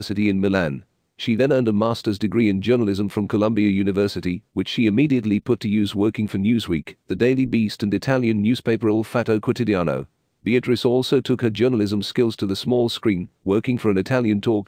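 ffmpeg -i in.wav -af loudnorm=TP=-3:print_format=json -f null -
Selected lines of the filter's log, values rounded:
"input_i" : "-20.9",
"input_tp" : "-3.7",
"input_lra" : "0.7",
"input_thresh" : "-31.0",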